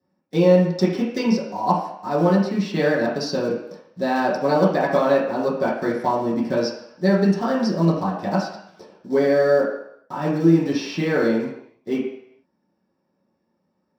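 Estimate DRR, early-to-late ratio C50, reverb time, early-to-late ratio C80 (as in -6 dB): -8.5 dB, 4.0 dB, 0.70 s, 6.5 dB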